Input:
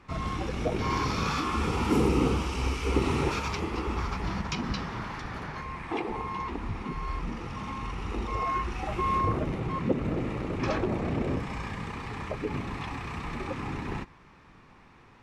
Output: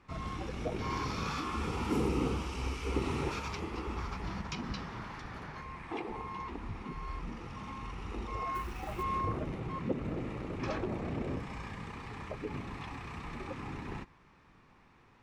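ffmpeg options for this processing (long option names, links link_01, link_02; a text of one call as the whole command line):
ffmpeg -i in.wav -filter_complex "[0:a]asplit=3[link_01][link_02][link_03];[link_01]afade=type=out:start_time=8.54:duration=0.02[link_04];[link_02]acrusher=bits=5:mode=log:mix=0:aa=0.000001,afade=type=in:start_time=8.54:duration=0.02,afade=type=out:start_time=9.02:duration=0.02[link_05];[link_03]afade=type=in:start_time=9.02:duration=0.02[link_06];[link_04][link_05][link_06]amix=inputs=3:normalize=0,volume=-7dB" out.wav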